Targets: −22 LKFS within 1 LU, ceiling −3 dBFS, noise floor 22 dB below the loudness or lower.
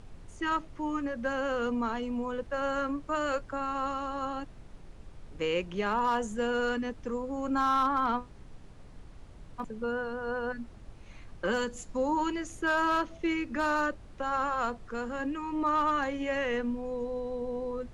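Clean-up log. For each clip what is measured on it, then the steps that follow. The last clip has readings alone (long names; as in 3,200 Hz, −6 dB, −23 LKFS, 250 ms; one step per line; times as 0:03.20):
share of clipped samples 0.2%; peaks flattened at −19.5 dBFS; background noise floor −50 dBFS; target noise floor −54 dBFS; integrated loudness −31.5 LKFS; sample peak −19.5 dBFS; target loudness −22.0 LKFS
→ clipped peaks rebuilt −19.5 dBFS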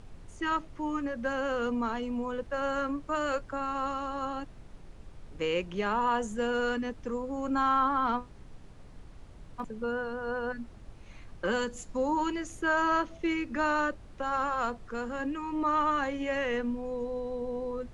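share of clipped samples 0.0%; background noise floor −50 dBFS; target noise floor −54 dBFS
→ noise reduction from a noise print 6 dB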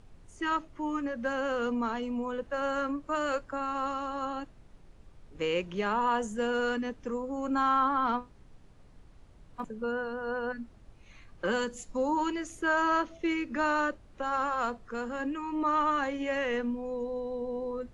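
background noise floor −55 dBFS; integrated loudness −31.5 LKFS; sample peak −15.5 dBFS; target loudness −22.0 LKFS
→ level +9.5 dB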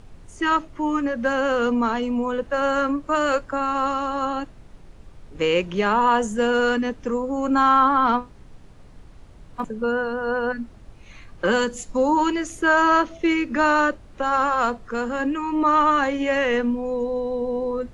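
integrated loudness −22.0 LKFS; sample peak −6.0 dBFS; background noise floor −46 dBFS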